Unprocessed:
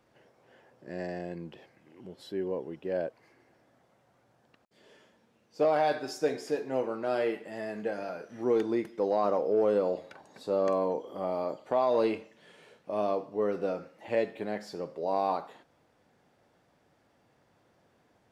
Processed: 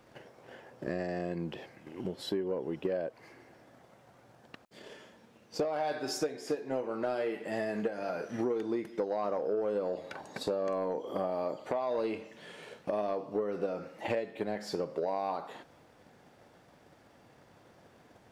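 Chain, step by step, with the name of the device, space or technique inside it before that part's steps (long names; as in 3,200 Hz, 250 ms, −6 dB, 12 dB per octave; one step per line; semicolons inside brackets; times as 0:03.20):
drum-bus smash (transient designer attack +8 dB, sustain +1 dB; downward compressor 6 to 1, threshold −36 dBFS, peak gain reduction 19.5 dB; soft clipping −28 dBFS, distortion −20 dB)
level +7 dB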